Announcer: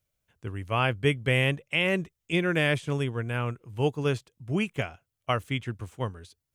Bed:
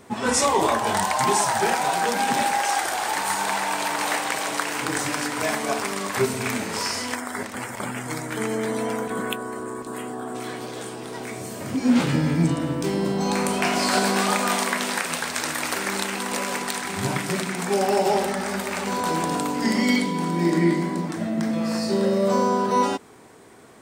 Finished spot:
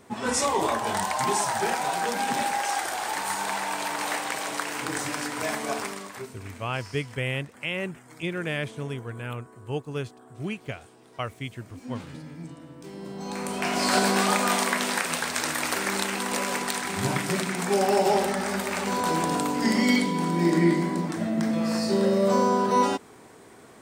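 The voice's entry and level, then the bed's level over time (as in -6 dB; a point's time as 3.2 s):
5.90 s, -5.0 dB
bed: 5.83 s -4.5 dB
6.33 s -19.5 dB
12.72 s -19.5 dB
13.92 s -1 dB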